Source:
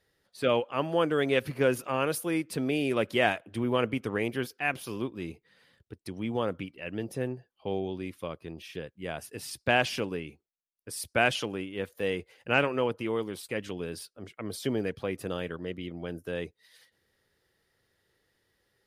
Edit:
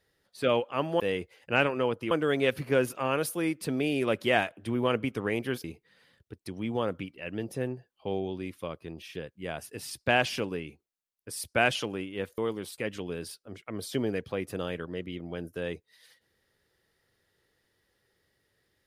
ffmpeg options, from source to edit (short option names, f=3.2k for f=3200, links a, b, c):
-filter_complex "[0:a]asplit=5[a][b][c][d][e];[a]atrim=end=1.002[f];[b]atrim=start=11.978:end=13.092[g];[c]atrim=start=0.998:end=4.532[h];[d]atrim=start=5.238:end=11.982[i];[e]atrim=start=13.088[j];[f][g]acrossfade=d=0.004:c1=hsin:c2=hsin[k];[k][h]acrossfade=d=0.004:c1=hsin:c2=hsin[l];[l][i]acrossfade=d=0.004:c1=hsin:c2=hsin[m];[m][j]acrossfade=d=0.004:c1=hsin:c2=hsin"